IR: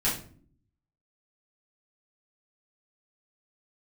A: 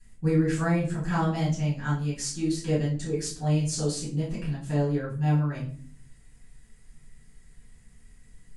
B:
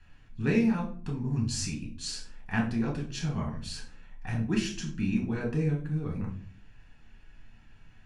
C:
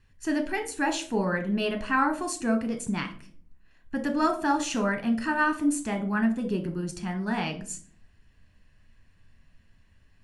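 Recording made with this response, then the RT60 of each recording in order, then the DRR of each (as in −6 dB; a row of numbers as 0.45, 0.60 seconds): A; non-exponential decay, non-exponential decay, non-exponential decay; −9.5, −1.0, 5.5 decibels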